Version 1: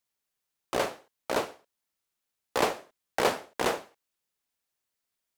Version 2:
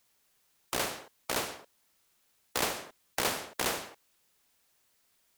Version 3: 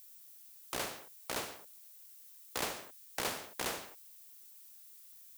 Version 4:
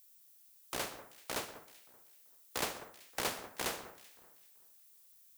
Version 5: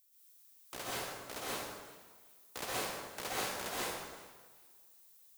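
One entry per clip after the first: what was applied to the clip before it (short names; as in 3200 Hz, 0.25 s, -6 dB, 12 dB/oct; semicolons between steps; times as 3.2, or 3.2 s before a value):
spectral compressor 2:1
added noise violet -50 dBFS; gain -6 dB
echo with dull and thin repeats by turns 0.192 s, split 1800 Hz, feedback 51%, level -8.5 dB; upward expander 1.5:1, over -49 dBFS; gain +1.5 dB
reverb RT60 1.2 s, pre-delay 0.113 s, DRR -7.5 dB; gain -7 dB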